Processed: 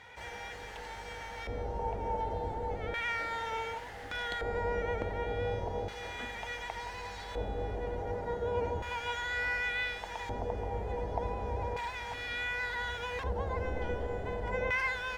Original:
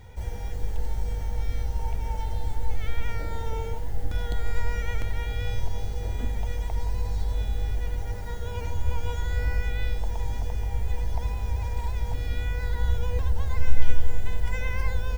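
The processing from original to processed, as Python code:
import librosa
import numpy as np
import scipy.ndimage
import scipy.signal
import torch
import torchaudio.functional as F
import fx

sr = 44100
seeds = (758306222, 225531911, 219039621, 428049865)

y = fx.filter_lfo_bandpass(x, sr, shape='square', hz=0.34, low_hz=530.0, high_hz=1900.0, q=1.0)
y = y * 10.0 ** (8.0 / 20.0)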